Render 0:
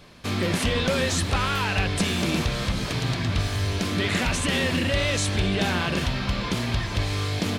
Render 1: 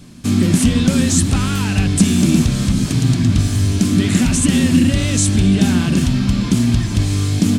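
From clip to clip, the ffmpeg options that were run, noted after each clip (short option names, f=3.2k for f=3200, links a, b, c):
-af "equalizer=f=125:t=o:w=1:g=4,equalizer=f=250:t=o:w=1:g=11,equalizer=f=500:t=o:w=1:g=-10,equalizer=f=1k:t=o:w=1:g=-6,equalizer=f=2k:t=o:w=1:g=-6,equalizer=f=4k:t=o:w=1:g=-5,equalizer=f=8k:t=o:w=1:g=8,volume=6.5dB"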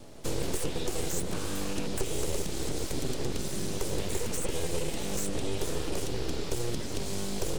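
-filter_complex "[0:a]aeval=exprs='val(0)+0.00794*sin(2*PI*420*n/s)':c=same,acrossover=split=180|870|3700|7500[a][b][c][d][e];[a]acompressor=threshold=-27dB:ratio=4[f];[b]acompressor=threshold=-22dB:ratio=4[g];[c]acompressor=threshold=-40dB:ratio=4[h];[d]acompressor=threshold=-34dB:ratio=4[i];[e]acompressor=threshold=-30dB:ratio=4[j];[f][g][h][i][j]amix=inputs=5:normalize=0,aeval=exprs='abs(val(0))':c=same,volume=-7.5dB"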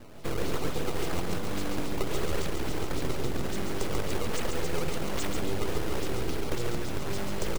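-filter_complex "[0:a]acrusher=samples=15:mix=1:aa=0.000001:lfo=1:lforange=24:lforate=3.6,asplit=2[a][b];[b]aecho=0:1:139:0.596[c];[a][c]amix=inputs=2:normalize=0"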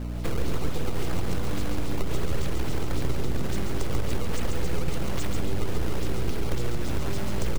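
-filter_complex "[0:a]acrossover=split=170[a][b];[b]acompressor=threshold=-36dB:ratio=6[c];[a][c]amix=inputs=2:normalize=0,aeval=exprs='val(0)+0.0141*(sin(2*PI*60*n/s)+sin(2*PI*2*60*n/s)/2+sin(2*PI*3*60*n/s)/3+sin(2*PI*4*60*n/s)/4+sin(2*PI*5*60*n/s)/5)':c=same,asplit=2[d][e];[e]volume=32.5dB,asoftclip=hard,volume=-32.5dB,volume=-9dB[f];[d][f]amix=inputs=2:normalize=0,volume=4dB"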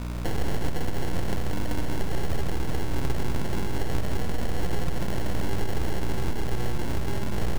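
-af "acrusher=samples=36:mix=1:aa=0.000001"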